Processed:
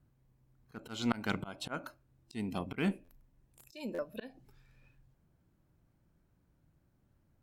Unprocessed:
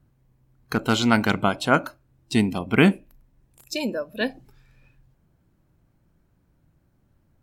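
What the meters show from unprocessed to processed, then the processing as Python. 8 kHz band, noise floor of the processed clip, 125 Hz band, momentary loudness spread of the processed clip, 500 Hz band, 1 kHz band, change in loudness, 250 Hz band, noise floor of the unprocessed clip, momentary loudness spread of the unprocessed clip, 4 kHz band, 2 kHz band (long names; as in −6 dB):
−16.0 dB, −73 dBFS, −15.5 dB, 18 LU, −16.0 dB, −17.5 dB, −15.5 dB, −15.0 dB, −66 dBFS, 11 LU, −16.0 dB, −17.5 dB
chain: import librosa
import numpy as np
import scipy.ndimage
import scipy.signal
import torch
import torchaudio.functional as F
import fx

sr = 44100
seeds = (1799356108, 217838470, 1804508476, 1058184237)

y = fx.auto_swell(x, sr, attack_ms=313.0)
y = fx.cheby_harmonics(y, sr, harmonics=(8,), levels_db=(-33,), full_scale_db=-6.5)
y = fx.buffer_glitch(y, sr, at_s=(3.04, 3.94), block=512, repeats=3)
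y = F.gain(torch.from_numpy(y), -7.0).numpy()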